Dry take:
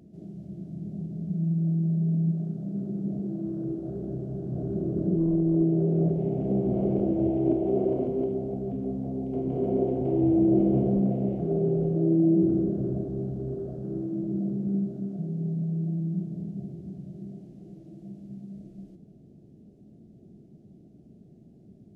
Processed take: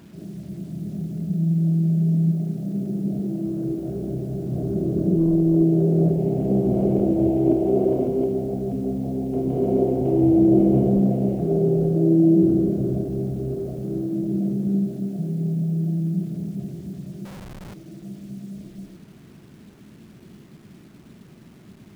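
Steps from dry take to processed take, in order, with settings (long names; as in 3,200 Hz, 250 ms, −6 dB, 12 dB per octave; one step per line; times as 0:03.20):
0:17.25–0:17.74: comparator with hysteresis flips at −45 dBFS
bit reduction 10 bits
level +5.5 dB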